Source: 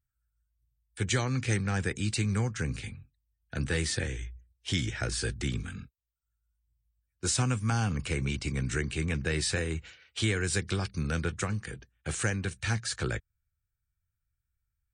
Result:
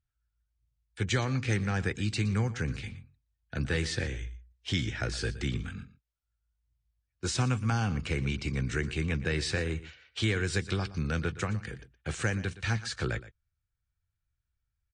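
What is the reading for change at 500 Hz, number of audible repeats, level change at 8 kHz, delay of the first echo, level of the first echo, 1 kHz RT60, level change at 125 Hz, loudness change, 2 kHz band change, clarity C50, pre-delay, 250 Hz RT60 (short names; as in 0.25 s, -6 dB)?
0.0 dB, 1, -6.5 dB, 0.118 s, -16.5 dB, none, 0.0 dB, -0.5 dB, 0.0 dB, none, none, none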